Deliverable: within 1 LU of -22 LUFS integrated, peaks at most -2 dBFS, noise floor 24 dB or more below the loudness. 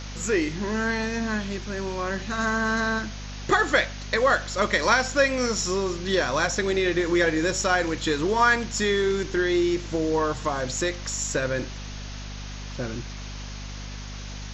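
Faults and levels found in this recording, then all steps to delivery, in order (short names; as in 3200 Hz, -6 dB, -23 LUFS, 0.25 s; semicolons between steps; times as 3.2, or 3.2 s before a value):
hum 50 Hz; harmonics up to 250 Hz; hum level -34 dBFS; noise floor -36 dBFS; noise floor target -49 dBFS; loudness -24.5 LUFS; peak -7.5 dBFS; loudness target -22.0 LUFS
-> de-hum 50 Hz, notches 5; denoiser 13 dB, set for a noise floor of -36 dBFS; gain +2.5 dB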